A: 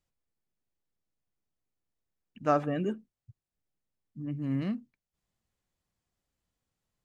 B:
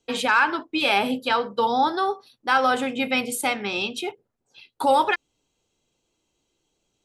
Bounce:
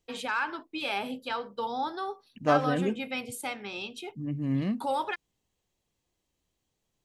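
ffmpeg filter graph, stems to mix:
ffmpeg -i stem1.wav -i stem2.wav -filter_complex "[0:a]bandreject=frequency=1400:width=5.1,volume=2.5dB[link_01];[1:a]volume=-11dB[link_02];[link_01][link_02]amix=inputs=2:normalize=0" out.wav

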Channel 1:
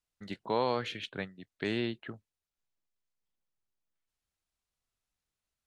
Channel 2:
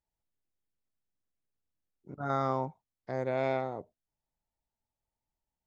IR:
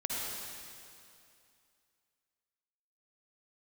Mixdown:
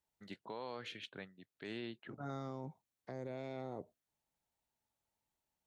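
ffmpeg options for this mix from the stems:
-filter_complex "[0:a]volume=-8dB,asplit=2[link_01][link_02];[1:a]bandreject=frequency=5000:width=11,acrossover=split=420|3000[link_03][link_04][link_05];[link_04]acompressor=threshold=-46dB:ratio=3[link_06];[link_03][link_06][link_05]amix=inputs=3:normalize=0,volume=2dB[link_07];[link_02]apad=whole_len=249960[link_08];[link_07][link_08]sidechaincompress=threshold=-47dB:ratio=5:attack=16:release=869[link_09];[link_01][link_09]amix=inputs=2:normalize=0,highpass=frequency=130:poles=1,alimiter=level_in=10dB:limit=-24dB:level=0:latency=1:release=100,volume=-10dB"

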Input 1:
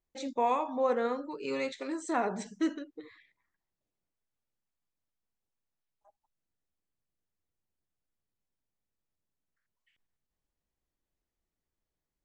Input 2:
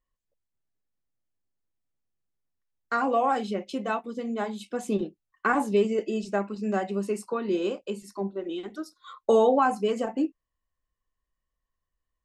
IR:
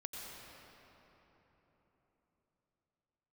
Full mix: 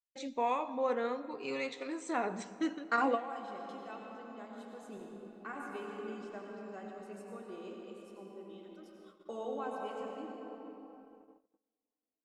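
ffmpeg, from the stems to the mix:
-filter_complex "[0:a]volume=-5.5dB,asplit=3[link_01][link_02][link_03];[link_02]volume=-11dB[link_04];[1:a]bandreject=frequency=50:width_type=h:width=6,bandreject=frequency=100:width_type=h:width=6,bandreject=frequency=150:width_type=h:width=6,bandreject=frequency=200:width_type=h:width=6,bandreject=frequency=250:width_type=h:width=6,bandreject=frequency=300:width_type=h:width=6,bandreject=frequency=350:width_type=h:width=6,bandreject=frequency=400:width_type=h:width=6,bandreject=frequency=450:width_type=h:width=6,volume=-5dB,asplit=2[link_05][link_06];[link_06]volume=-11.5dB[link_07];[link_03]apad=whole_len=539875[link_08];[link_05][link_08]sidechaingate=range=-33dB:threshold=-60dB:ratio=16:detection=peak[link_09];[2:a]atrim=start_sample=2205[link_10];[link_04][link_07]amix=inputs=2:normalize=0[link_11];[link_11][link_10]afir=irnorm=-1:irlink=0[link_12];[link_01][link_09][link_12]amix=inputs=3:normalize=0,agate=range=-28dB:threshold=-56dB:ratio=16:detection=peak,adynamicequalizer=threshold=0.00158:dfrequency=2600:dqfactor=1.3:tfrequency=2600:tqfactor=1.3:attack=5:release=100:ratio=0.375:range=2:mode=boostabove:tftype=bell"

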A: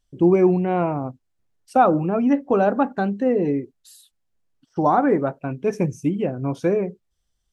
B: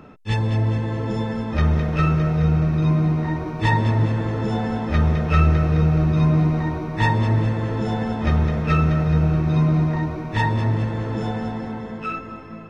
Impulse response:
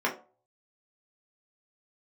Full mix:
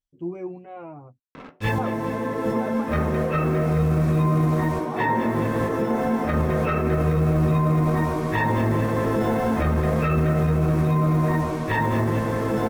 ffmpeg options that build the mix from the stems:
-filter_complex "[0:a]asplit=2[link_01][link_02];[link_02]adelay=8.4,afreqshift=-0.53[link_03];[link_01][link_03]amix=inputs=2:normalize=1,volume=-13.5dB,asplit=3[link_04][link_05][link_06];[link_04]atrim=end=1.2,asetpts=PTS-STARTPTS,afade=type=out:start_time=1.196:duration=0.004:curve=hsin[link_07];[link_05]atrim=start=1.2:end=1.78,asetpts=PTS-STARTPTS,volume=0[link_08];[link_06]atrim=start=1.78,asetpts=PTS-STARTPTS,afade=type=in:duration=0.004:curve=hsin[link_09];[link_07][link_08][link_09]concat=n=3:v=0:a=1,asplit=2[link_10][link_11];[1:a]equalizer=frequency=5400:width=0.79:gain=-10,acrusher=bits=6:mix=0:aa=0.5,adelay=1350,volume=1dB,asplit=2[link_12][link_13];[link_13]volume=-10.5dB[link_14];[link_11]apad=whole_len=619268[link_15];[link_12][link_15]sidechaincompress=threshold=-41dB:ratio=8:attack=27:release=346[link_16];[2:a]atrim=start_sample=2205[link_17];[link_14][link_17]afir=irnorm=-1:irlink=0[link_18];[link_10][link_16][link_18]amix=inputs=3:normalize=0,alimiter=limit=-13.5dB:level=0:latency=1:release=21"

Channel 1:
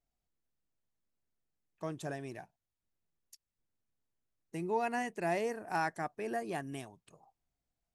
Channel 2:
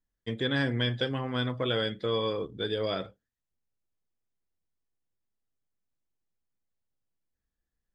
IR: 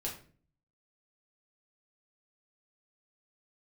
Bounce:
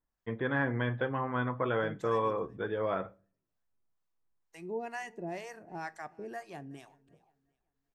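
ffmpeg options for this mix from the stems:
-filter_complex "[0:a]equalizer=frequency=10000:width_type=o:width=0.26:gain=-13,acrossover=split=650[link_01][link_02];[link_01]aeval=exprs='val(0)*(1-1/2+1/2*cos(2*PI*2.1*n/s))':channel_layout=same[link_03];[link_02]aeval=exprs='val(0)*(1-1/2-1/2*cos(2*PI*2.1*n/s))':channel_layout=same[link_04];[link_03][link_04]amix=inputs=2:normalize=0,volume=-1.5dB,asplit=3[link_05][link_06][link_07];[link_06]volume=-15.5dB[link_08];[link_07]volume=-23.5dB[link_09];[1:a]lowpass=frequency=2200:width=0.5412,lowpass=frequency=2200:width=1.3066,equalizer=frequency=1000:width=1.3:gain=10,volume=-4.5dB,asplit=2[link_10][link_11];[link_11]volume=-18dB[link_12];[2:a]atrim=start_sample=2205[link_13];[link_08][link_12]amix=inputs=2:normalize=0[link_14];[link_14][link_13]afir=irnorm=-1:irlink=0[link_15];[link_09]aecho=0:1:374|748|1122|1496:1|0.31|0.0961|0.0298[link_16];[link_05][link_10][link_15][link_16]amix=inputs=4:normalize=0"

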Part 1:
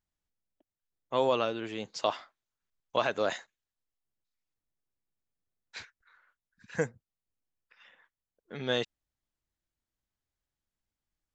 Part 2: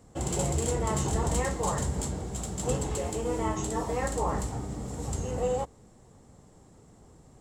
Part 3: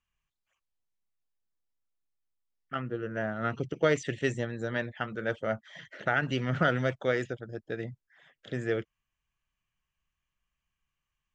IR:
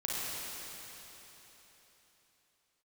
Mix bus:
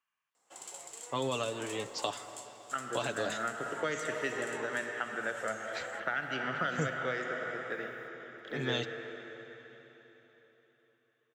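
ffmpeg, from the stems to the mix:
-filter_complex "[0:a]aecho=1:1:7:0.55,acrusher=bits=11:mix=0:aa=0.000001,volume=-1.5dB,asplit=2[link_01][link_02];[link_02]volume=-19.5dB[link_03];[1:a]highpass=960,acompressor=threshold=-33dB:ratio=6,adelay=350,volume=-9dB[link_04];[2:a]highpass=240,equalizer=frequency=1300:width_type=o:width=1.9:gain=10.5,volume=-9.5dB,asplit=2[link_05][link_06];[link_06]volume=-6.5dB[link_07];[3:a]atrim=start_sample=2205[link_08];[link_03][link_07]amix=inputs=2:normalize=0[link_09];[link_09][link_08]afir=irnorm=-1:irlink=0[link_10];[link_01][link_04][link_05][link_10]amix=inputs=4:normalize=0,acrossover=split=250|3000[link_11][link_12][link_13];[link_12]acompressor=threshold=-32dB:ratio=6[link_14];[link_11][link_14][link_13]amix=inputs=3:normalize=0"

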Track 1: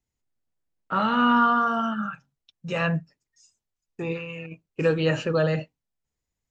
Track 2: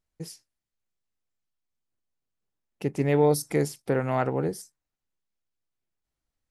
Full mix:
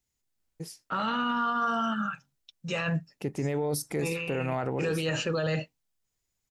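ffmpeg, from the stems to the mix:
ffmpeg -i stem1.wav -i stem2.wav -filter_complex "[0:a]highshelf=frequency=2600:gain=9.5,volume=-2dB[link_01];[1:a]adelay=400,volume=-1.5dB[link_02];[link_01][link_02]amix=inputs=2:normalize=0,alimiter=limit=-21dB:level=0:latency=1:release=15" out.wav

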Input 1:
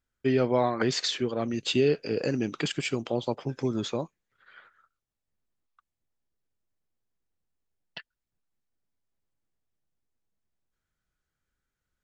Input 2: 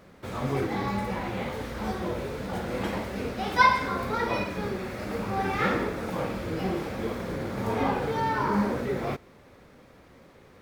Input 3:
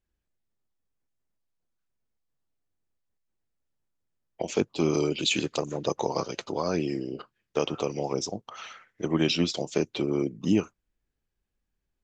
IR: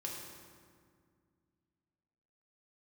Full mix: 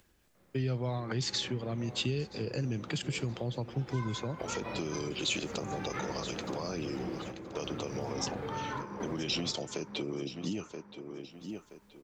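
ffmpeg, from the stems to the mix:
-filter_complex "[0:a]equalizer=frequency=120:width_type=o:width=1.1:gain=12,adelay=300,volume=-4dB,asplit=2[link_01][link_02];[link_02]volume=-21dB[link_03];[1:a]bass=frequency=250:gain=4,treble=frequency=4000:gain=-11,adelay=350,volume=-9dB,asplit=3[link_04][link_05][link_06];[link_05]volume=-10dB[link_07];[link_06]volume=-14.5dB[link_08];[2:a]volume=-1.5dB,asplit=3[link_09][link_10][link_11];[link_10]volume=-15.5dB[link_12];[link_11]apad=whole_len=483742[link_13];[link_04][link_13]sidechaingate=range=-29dB:threshold=-51dB:ratio=16:detection=peak[link_14];[link_14][link_09]amix=inputs=2:normalize=0,acompressor=mode=upward:threshold=-46dB:ratio=2.5,alimiter=limit=-20dB:level=0:latency=1:release=31,volume=0dB[link_15];[3:a]atrim=start_sample=2205[link_16];[link_07][link_16]afir=irnorm=-1:irlink=0[link_17];[link_03][link_08][link_12]amix=inputs=3:normalize=0,aecho=0:1:975|1950|2925|3900|4875:1|0.33|0.109|0.0359|0.0119[link_18];[link_01][link_15][link_17][link_18]amix=inputs=4:normalize=0,lowshelf=frequency=75:gain=-11.5,acrossover=split=130|3000[link_19][link_20][link_21];[link_20]acompressor=threshold=-34dB:ratio=6[link_22];[link_19][link_22][link_21]amix=inputs=3:normalize=0"

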